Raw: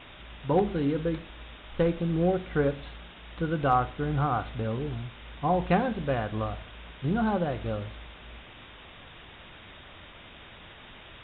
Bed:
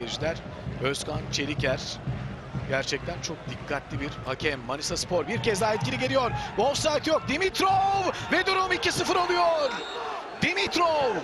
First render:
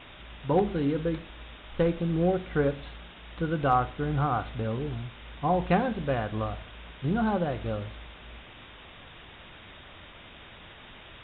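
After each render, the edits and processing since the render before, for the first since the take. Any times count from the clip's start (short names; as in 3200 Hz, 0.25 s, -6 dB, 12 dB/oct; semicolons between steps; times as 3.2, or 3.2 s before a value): nothing audible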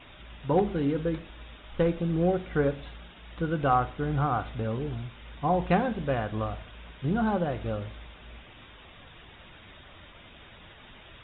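denoiser 6 dB, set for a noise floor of -49 dBFS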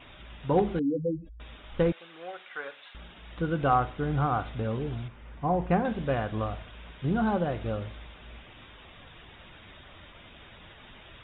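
0.79–1.4 spectral contrast raised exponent 3.4; 1.92–2.95 HPF 1200 Hz; 5.08–5.85 air absorption 490 m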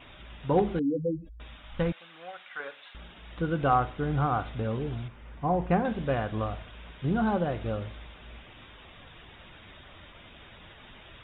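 1.48–2.6 bell 400 Hz -12 dB 0.58 oct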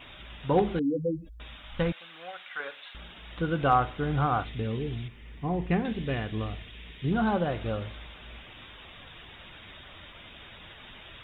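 4.44–7.12 spectral gain 480–1700 Hz -8 dB; high shelf 2200 Hz +7 dB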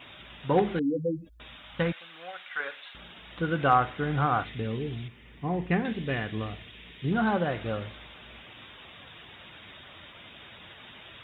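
HPF 91 Hz 12 dB/oct; dynamic EQ 1800 Hz, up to +5 dB, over -46 dBFS, Q 1.7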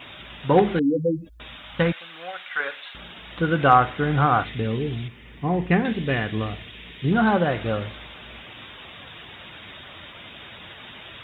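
gain +6.5 dB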